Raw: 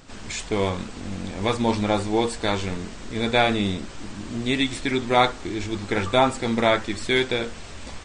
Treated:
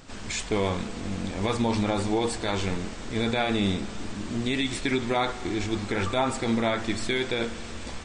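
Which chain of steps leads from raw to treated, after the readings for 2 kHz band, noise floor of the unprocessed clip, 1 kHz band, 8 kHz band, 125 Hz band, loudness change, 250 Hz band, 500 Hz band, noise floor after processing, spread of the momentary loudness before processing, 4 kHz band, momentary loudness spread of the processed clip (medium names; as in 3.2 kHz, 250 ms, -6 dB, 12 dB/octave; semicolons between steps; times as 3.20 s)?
-4.5 dB, -39 dBFS, -6.0 dB, -0.5 dB, -1.5 dB, -4.0 dB, -2.0 dB, -4.5 dB, -38 dBFS, 13 LU, -4.0 dB, 8 LU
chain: peak limiter -15.5 dBFS, peak gain reduction 9.5 dB; spring tank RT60 3.6 s, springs 35 ms, chirp 35 ms, DRR 13.5 dB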